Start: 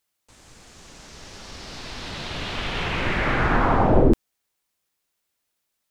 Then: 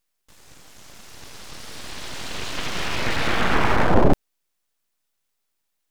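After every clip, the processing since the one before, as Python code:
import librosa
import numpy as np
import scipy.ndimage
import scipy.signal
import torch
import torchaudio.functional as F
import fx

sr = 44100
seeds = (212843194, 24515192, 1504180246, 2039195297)

y = np.abs(x)
y = y * librosa.db_to_amplitude(2.5)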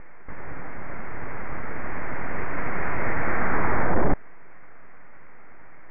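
y = fx.power_curve(x, sr, exponent=0.35)
y = scipy.signal.sosfilt(scipy.signal.butter(12, 2200.0, 'lowpass', fs=sr, output='sos'), y)
y = y * librosa.db_to_amplitude(-6.5)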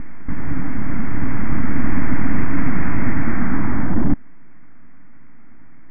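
y = fx.low_shelf_res(x, sr, hz=350.0, db=9.0, q=3.0)
y = fx.rider(y, sr, range_db=5, speed_s=0.5)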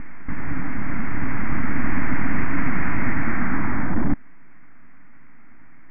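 y = fx.tilt_shelf(x, sr, db=-4.5, hz=970.0)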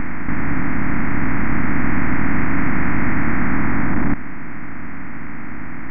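y = fx.bin_compress(x, sr, power=0.4)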